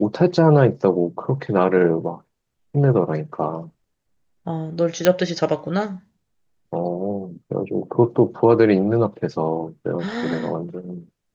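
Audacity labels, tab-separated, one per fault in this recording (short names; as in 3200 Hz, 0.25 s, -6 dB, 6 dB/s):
5.050000	5.050000	pop -2 dBFS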